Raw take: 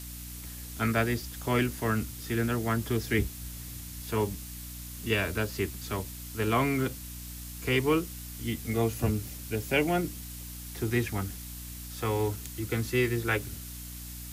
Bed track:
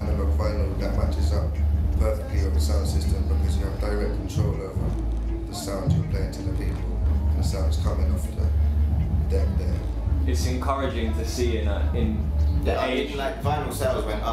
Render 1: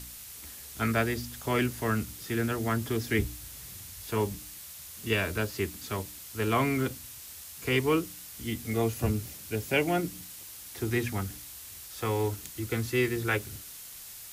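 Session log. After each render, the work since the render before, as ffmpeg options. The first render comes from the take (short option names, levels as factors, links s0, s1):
-af "bandreject=f=60:t=h:w=4,bandreject=f=120:t=h:w=4,bandreject=f=180:t=h:w=4,bandreject=f=240:t=h:w=4,bandreject=f=300:t=h:w=4"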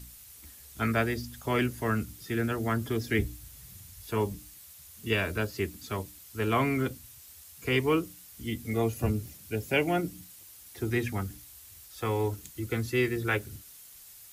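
-af "afftdn=nr=8:nf=-45"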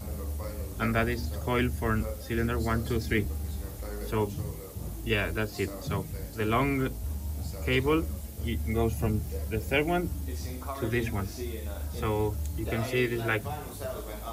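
-filter_complex "[1:a]volume=0.251[s0];[0:a][s0]amix=inputs=2:normalize=0"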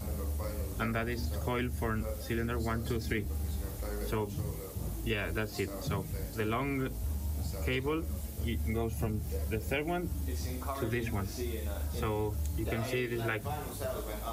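-af "acompressor=threshold=0.0355:ratio=6"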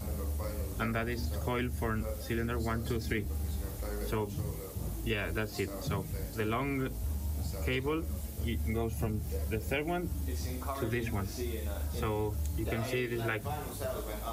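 -af anull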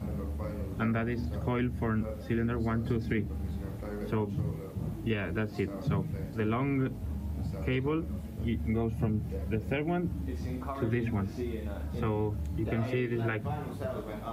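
-af "highpass=160,bass=f=250:g=12,treble=f=4000:g=-15"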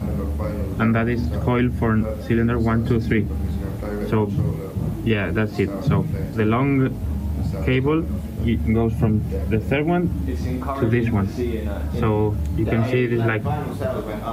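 -af "volume=3.55"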